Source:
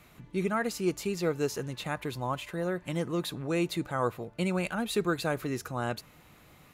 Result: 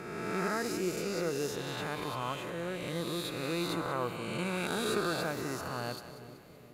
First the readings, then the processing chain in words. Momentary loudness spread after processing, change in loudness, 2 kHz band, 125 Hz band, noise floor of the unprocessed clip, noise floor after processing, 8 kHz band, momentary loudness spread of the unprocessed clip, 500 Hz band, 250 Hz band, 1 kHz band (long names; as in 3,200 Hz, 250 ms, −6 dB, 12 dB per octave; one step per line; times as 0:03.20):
6 LU, −2.5 dB, −1.0 dB, −5.0 dB, −57 dBFS, −53 dBFS, 0.0 dB, 5 LU, −3.0 dB, −4.0 dB, −1.5 dB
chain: peak hold with a rise ahead of every peak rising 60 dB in 2.00 s
harmonic generator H 3 −25 dB, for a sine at −12 dBFS
echo with a time of its own for lows and highs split 600 Hz, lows 416 ms, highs 189 ms, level −12 dB
level −6 dB